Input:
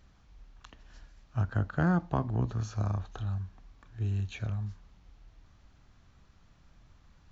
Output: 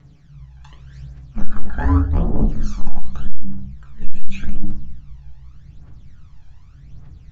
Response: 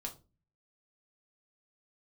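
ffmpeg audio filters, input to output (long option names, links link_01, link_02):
-filter_complex "[0:a]aeval=exprs='val(0)*sin(2*PI*97*n/s)':channel_layout=same,asubboost=boost=2:cutoff=100[link_01];[1:a]atrim=start_sample=2205,asetrate=26460,aresample=44100[link_02];[link_01][link_02]afir=irnorm=-1:irlink=0,aphaser=in_gain=1:out_gain=1:delay=1.3:decay=0.64:speed=0.85:type=triangular,acontrast=69,volume=-1dB"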